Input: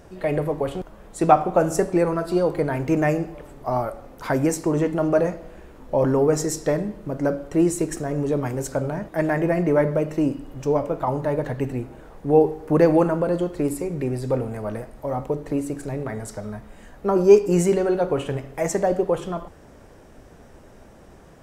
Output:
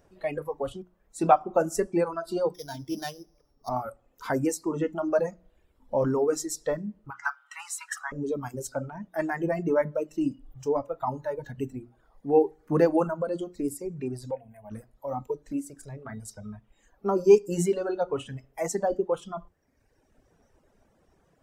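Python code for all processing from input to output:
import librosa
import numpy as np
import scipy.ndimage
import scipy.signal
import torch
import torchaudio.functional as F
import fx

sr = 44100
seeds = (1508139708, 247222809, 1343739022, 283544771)

y = fx.chain(x, sr, fx.sample_sort(block=8),
    fx.high_shelf(hz=4900.0, db=-6.0),
    fx.comb_fb(f0_hz=71.0, decay_s=0.33, harmonics='all', damping=0.0, mix_pct=50), at=(2.54, 3.69))
y = fx.chain(y, sr, fx.cheby1_highpass(hz=800.0, order=6),
    fx.peak_eq(hz=1500.0, db=12.5, octaves=1.8), at=(7.1, 8.12))
y = fx.chain(y, sr, fx.low_shelf(hz=190.0, db=-7.5),
    fx.fixed_phaser(hz=1300.0, stages=6), at=(14.31, 14.71))
y = fx.noise_reduce_blind(y, sr, reduce_db=10)
y = fx.hum_notches(y, sr, base_hz=60, count=6)
y = fx.dereverb_blind(y, sr, rt60_s=1.1)
y = y * librosa.db_to_amplitude(-4.0)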